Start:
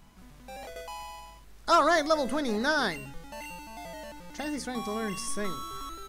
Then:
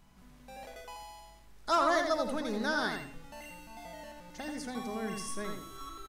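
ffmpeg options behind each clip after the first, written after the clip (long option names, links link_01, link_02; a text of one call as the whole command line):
ffmpeg -i in.wav -filter_complex "[0:a]asplit=2[link_01][link_02];[link_02]adelay=85,lowpass=frequency=3900:poles=1,volume=-4.5dB,asplit=2[link_03][link_04];[link_04]adelay=85,lowpass=frequency=3900:poles=1,volume=0.31,asplit=2[link_05][link_06];[link_06]adelay=85,lowpass=frequency=3900:poles=1,volume=0.31,asplit=2[link_07][link_08];[link_08]adelay=85,lowpass=frequency=3900:poles=1,volume=0.31[link_09];[link_01][link_03][link_05][link_07][link_09]amix=inputs=5:normalize=0,volume=-6dB" out.wav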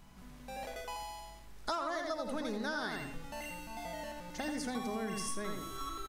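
ffmpeg -i in.wav -af "acompressor=threshold=-37dB:ratio=12,volume=4dB" out.wav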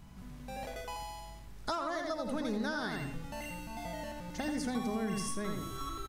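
ffmpeg -i in.wav -af "equalizer=frequency=99:width_type=o:width=2.3:gain=9.5" out.wav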